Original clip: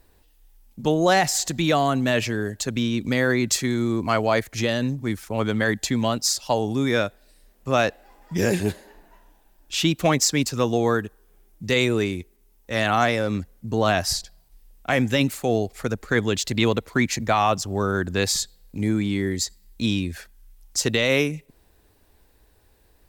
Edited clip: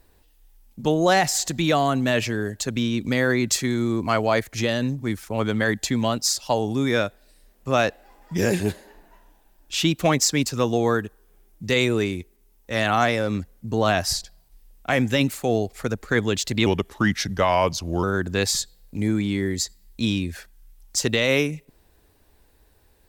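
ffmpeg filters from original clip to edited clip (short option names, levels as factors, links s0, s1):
-filter_complex "[0:a]asplit=3[s0][s1][s2];[s0]atrim=end=16.664[s3];[s1]atrim=start=16.66:end=17.84,asetpts=PTS-STARTPTS,asetrate=37926,aresample=44100,atrim=end_sample=60509,asetpts=PTS-STARTPTS[s4];[s2]atrim=start=17.836[s5];[s3][s4]acrossfade=d=0.004:c1=hsin:c2=hsin[s6];[s6][s5]acrossfade=d=0.004:c1=hsin:c2=hsin"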